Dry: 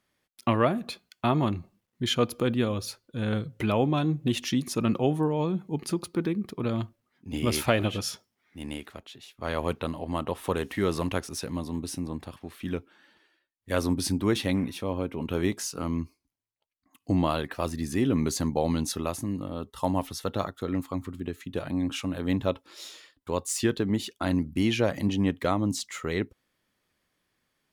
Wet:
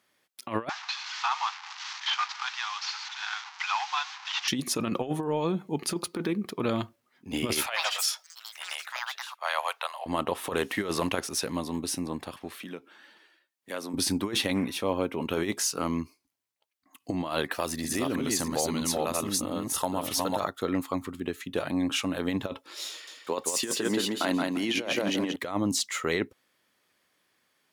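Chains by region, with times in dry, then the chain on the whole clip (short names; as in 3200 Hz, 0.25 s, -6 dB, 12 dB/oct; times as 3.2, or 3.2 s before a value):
0.69–4.48 delta modulation 32 kbps, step -35.5 dBFS + steep high-pass 800 Hz 96 dB/oct
7.66–10.06 steep high-pass 680 Hz + echoes that change speed 86 ms, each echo +7 st, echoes 2, each echo -6 dB
12.59–13.94 compressor 2:1, threshold -43 dBFS + HPF 140 Hz 24 dB/oct
17.51–20.4 reverse delay 0.324 s, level -1 dB + high shelf 4700 Hz +5.5 dB + compressor 3:1, threshold -28 dBFS
22.9–25.36 HPF 210 Hz + feedback echo 0.172 s, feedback 23%, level -4.5 dB
whole clip: HPF 140 Hz 6 dB/oct; low shelf 260 Hz -8.5 dB; negative-ratio compressor -31 dBFS, ratio -0.5; gain +4.5 dB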